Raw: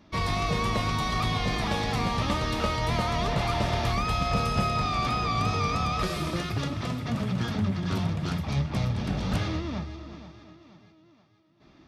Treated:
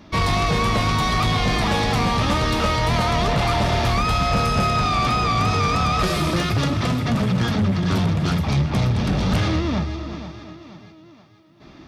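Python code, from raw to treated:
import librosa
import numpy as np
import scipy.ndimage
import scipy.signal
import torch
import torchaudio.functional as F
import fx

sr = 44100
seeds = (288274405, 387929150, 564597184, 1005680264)

p1 = fx.rider(x, sr, range_db=3, speed_s=0.5)
p2 = x + (p1 * librosa.db_to_amplitude(-1.0))
p3 = 10.0 ** (-18.0 / 20.0) * np.tanh(p2 / 10.0 ** (-18.0 / 20.0))
y = p3 * librosa.db_to_amplitude(4.5)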